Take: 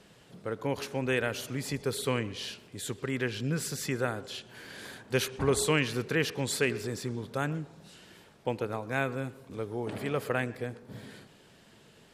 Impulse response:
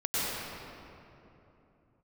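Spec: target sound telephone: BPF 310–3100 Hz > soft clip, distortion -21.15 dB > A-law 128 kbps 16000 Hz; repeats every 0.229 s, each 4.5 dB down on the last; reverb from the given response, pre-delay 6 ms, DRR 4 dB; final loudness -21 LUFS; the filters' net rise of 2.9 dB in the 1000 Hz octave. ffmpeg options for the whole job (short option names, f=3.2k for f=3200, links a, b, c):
-filter_complex "[0:a]equalizer=f=1k:t=o:g=4,aecho=1:1:229|458|687|916|1145|1374|1603|1832|2061:0.596|0.357|0.214|0.129|0.0772|0.0463|0.0278|0.0167|0.01,asplit=2[a][b];[1:a]atrim=start_sample=2205,adelay=6[c];[b][c]afir=irnorm=-1:irlink=0,volume=-14.5dB[d];[a][d]amix=inputs=2:normalize=0,highpass=310,lowpass=3.1k,asoftclip=threshold=-17dB,volume=11dB" -ar 16000 -c:a pcm_alaw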